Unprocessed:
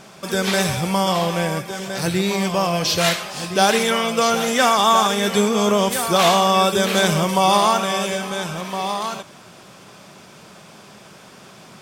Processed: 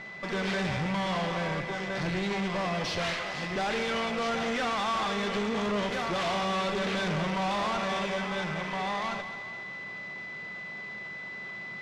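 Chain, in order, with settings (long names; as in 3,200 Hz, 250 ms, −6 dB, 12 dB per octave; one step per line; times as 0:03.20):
running median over 5 samples
parametric band 2,000 Hz +3.5 dB 0.72 octaves
steady tone 2,000 Hz −35 dBFS
tube saturation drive 26 dB, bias 0.65
high-frequency loss of the air 97 metres
echo with a time of its own for lows and highs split 390 Hz, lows 125 ms, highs 213 ms, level −12 dB
level −1.5 dB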